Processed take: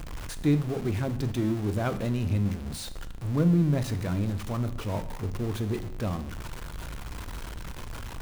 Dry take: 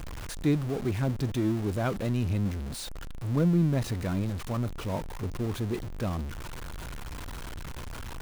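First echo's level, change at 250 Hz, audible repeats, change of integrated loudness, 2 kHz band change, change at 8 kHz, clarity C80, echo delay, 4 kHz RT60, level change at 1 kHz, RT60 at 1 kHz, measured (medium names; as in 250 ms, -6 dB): no echo, +1.0 dB, no echo, +1.0 dB, +0.5 dB, +0.5 dB, 16.5 dB, no echo, 0.70 s, +0.5 dB, 0.75 s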